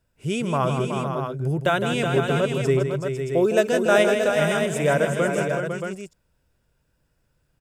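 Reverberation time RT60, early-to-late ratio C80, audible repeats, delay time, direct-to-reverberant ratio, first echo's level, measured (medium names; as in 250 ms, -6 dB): no reverb, no reverb, 4, 159 ms, no reverb, -8.0 dB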